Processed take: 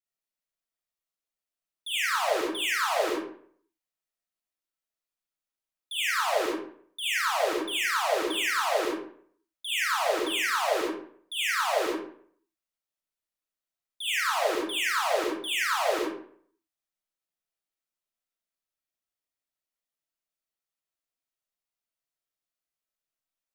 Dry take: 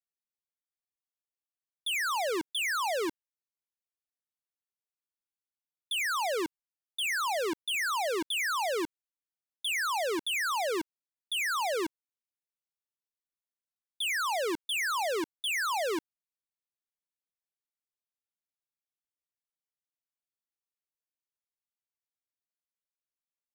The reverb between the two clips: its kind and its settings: algorithmic reverb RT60 0.59 s, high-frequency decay 0.65×, pre-delay 15 ms, DRR -7.5 dB; trim -4.5 dB

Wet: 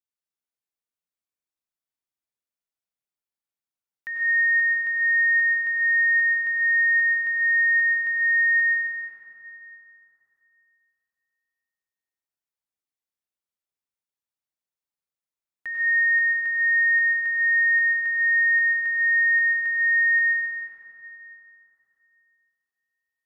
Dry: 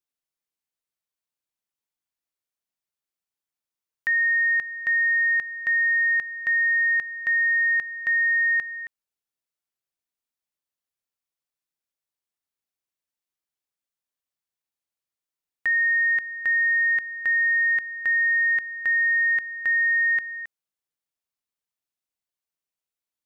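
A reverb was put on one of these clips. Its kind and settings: plate-style reverb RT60 3.3 s, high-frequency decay 0.5×, pre-delay 80 ms, DRR -4 dB; trim -9.5 dB

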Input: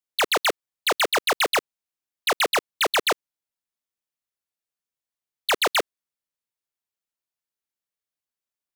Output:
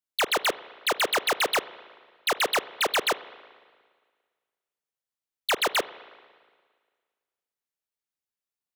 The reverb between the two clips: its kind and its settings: spring tank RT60 1.7 s, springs 36/57 ms, chirp 70 ms, DRR 16 dB; trim -3 dB

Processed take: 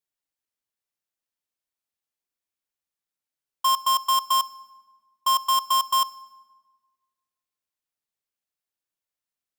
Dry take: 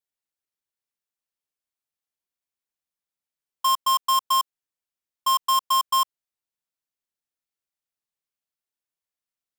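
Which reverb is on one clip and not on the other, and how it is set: FDN reverb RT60 1.4 s, low-frequency decay 1.2×, high-frequency decay 0.65×, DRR 18 dB

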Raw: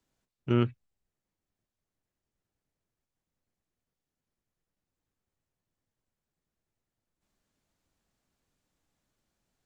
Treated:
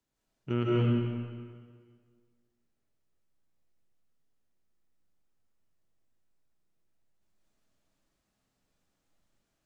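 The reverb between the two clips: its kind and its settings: algorithmic reverb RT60 1.8 s, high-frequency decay 0.85×, pre-delay 115 ms, DRR -6 dB; trim -5.5 dB

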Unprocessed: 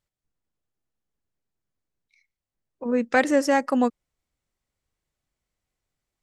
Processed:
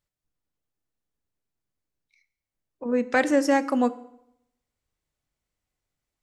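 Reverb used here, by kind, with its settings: FDN reverb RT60 0.78 s, low-frequency decay 1.05×, high-frequency decay 0.85×, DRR 13 dB; trim -1.5 dB

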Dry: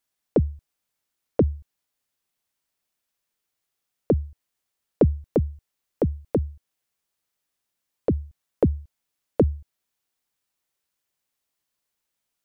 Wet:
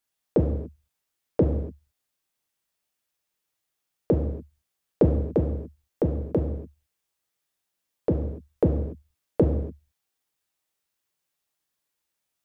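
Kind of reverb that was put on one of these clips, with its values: gated-style reverb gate 310 ms falling, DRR 1.5 dB; trim -2.5 dB

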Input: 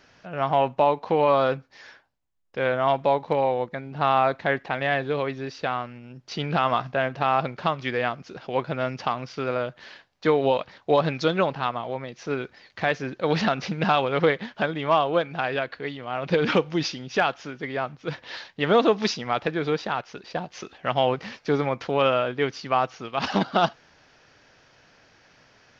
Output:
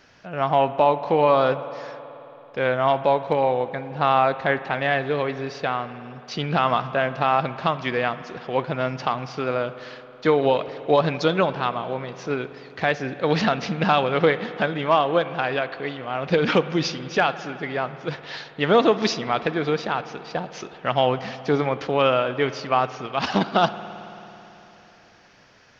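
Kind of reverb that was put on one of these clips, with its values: spring tank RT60 3.4 s, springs 54 ms, chirp 40 ms, DRR 13 dB; trim +2 dB

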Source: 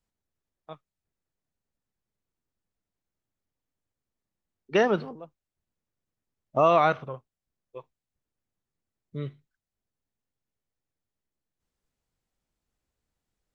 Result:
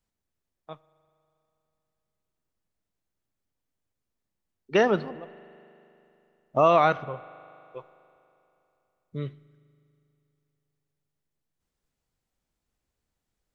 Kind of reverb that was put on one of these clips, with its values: spring tank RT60 3 s, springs 40 ms, chirp 35 ms, DRR 19 dB; trim +1 dB

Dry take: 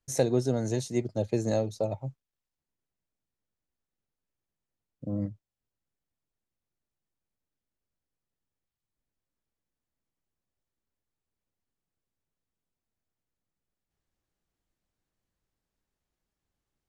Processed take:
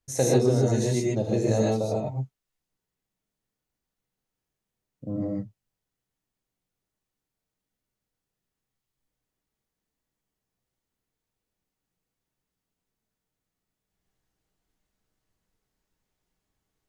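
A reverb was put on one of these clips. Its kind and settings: gated-style reverb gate 170 ms rising, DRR -4 dB

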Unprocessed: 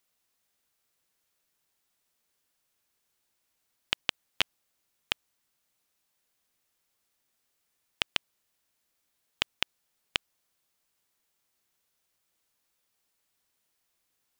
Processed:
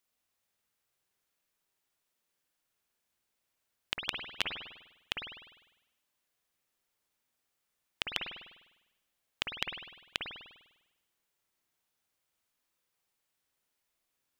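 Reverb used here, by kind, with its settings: spring tank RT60 1 s, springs 50 ms, chirp 75 ms, DRR 1 dB; trim -5.5 dB

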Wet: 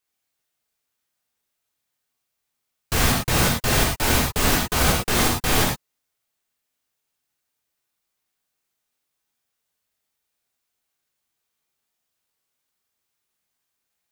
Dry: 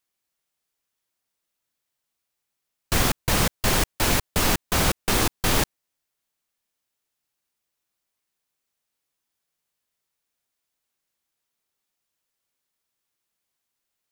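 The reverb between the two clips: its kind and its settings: gated-style reverb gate 130 ms flat, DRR -3 dB; trim -2 dB

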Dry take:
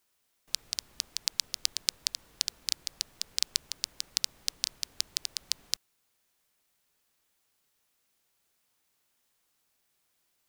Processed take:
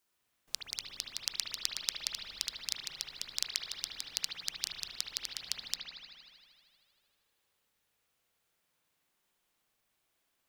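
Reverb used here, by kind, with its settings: spring tank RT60 2.2 s, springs 58 ms, chirp 20 ms, DRR -3 dB; trim -5.5 dB

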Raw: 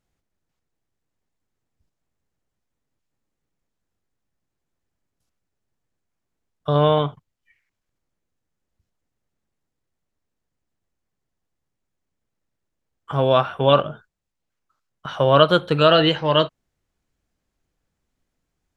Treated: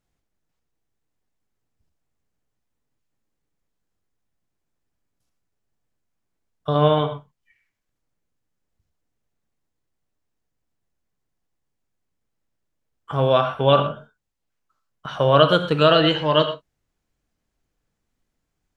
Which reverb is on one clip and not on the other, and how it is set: gated-style reverb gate 140 ms flat, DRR 8 dB; trim -1 dB

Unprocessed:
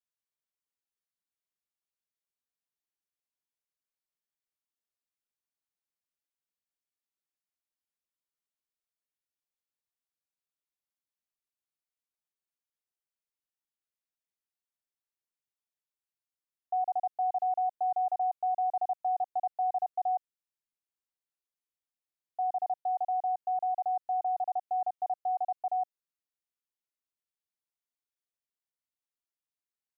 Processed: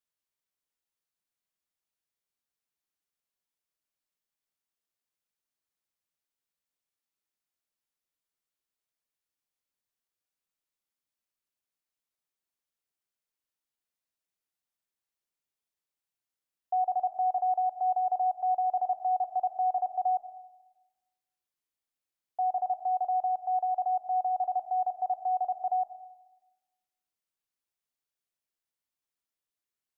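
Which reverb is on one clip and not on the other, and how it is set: algorithmic reverb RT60 1.1 s, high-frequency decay 0.45×, pre-delay 40 ms, DRR 12 dB; trim +2 dB

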